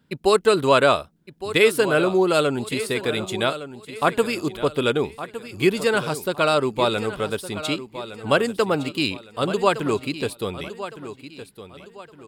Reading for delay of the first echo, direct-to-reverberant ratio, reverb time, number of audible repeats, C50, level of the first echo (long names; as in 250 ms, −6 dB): 1,162 ms, no reverb audible, no reverb audible, 3, no reverb audible, −13.0 dB